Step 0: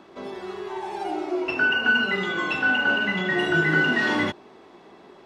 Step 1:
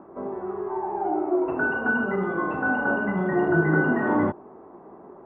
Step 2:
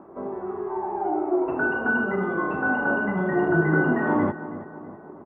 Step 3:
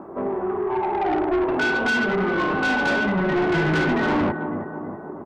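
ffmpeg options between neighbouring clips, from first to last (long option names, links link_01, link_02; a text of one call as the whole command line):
ffmpeg -i in.wav -af "lowpass=frequency=1200:width=0.5412,lowpass=frequency=1200:width=1.3066,volume=3.5dB" out.wav
ffmpeg -i in.wav -filter_complex "[0:a]asplit=2[link_01][link_02];[link_02]adelay=324,lowpass=frequency=2200:poles=1,volume=-13.5dB,asplit=2[link_03][link_04];[link_04]adelay=324,lowpass=frequency=2200:poles=1,volume=0.5,asplit=2[link_05][link_06];[link_06]adelay=324,lowpass=frequency=2200:poles=1,volume=0.5,asplit=2[link_07][link_08];[link_08]adelay=324,lowpass=frequency=2200:poles=1,volume=0.5,asplit=2[link_09][link_10];[link_10]adelay=324,lowpass=frequency=2200:poles=1,volume=0.5[link_11];[link_01][link_03][link_05][link_07][link_09][link_11]amix=inputs=6:normalize=0" out.wav
ffmpeg -i in.wav -af "asoftclip=type=tanh:threshold=-26dB,volume=8dB" out.wav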